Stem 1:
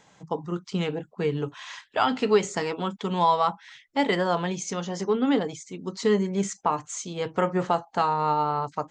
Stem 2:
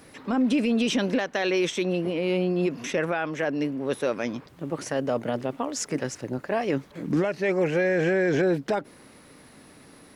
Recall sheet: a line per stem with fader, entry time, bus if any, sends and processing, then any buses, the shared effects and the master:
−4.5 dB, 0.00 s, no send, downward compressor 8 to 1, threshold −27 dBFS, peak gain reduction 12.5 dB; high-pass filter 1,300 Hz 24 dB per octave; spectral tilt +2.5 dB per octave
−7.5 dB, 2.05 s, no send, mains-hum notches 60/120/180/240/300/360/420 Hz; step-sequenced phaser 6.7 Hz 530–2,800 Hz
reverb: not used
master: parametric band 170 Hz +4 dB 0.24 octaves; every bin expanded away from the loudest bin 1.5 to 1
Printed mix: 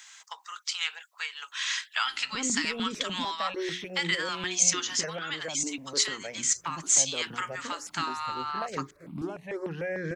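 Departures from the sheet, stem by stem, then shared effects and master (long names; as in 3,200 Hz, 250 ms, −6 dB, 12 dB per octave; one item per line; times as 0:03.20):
stem 1 −4.5 dB → +7.0 dB
master: missing every bin expanded away from the loudest bin 1.5 to 1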